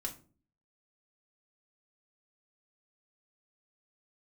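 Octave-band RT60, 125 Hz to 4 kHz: 0.60 s, 0.65 s, 0.50 s, 0.35 s, 0.30 s, 0.25 s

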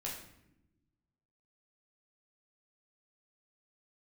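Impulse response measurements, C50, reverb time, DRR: 4.5 dB, 0.85 s, -4.5 dB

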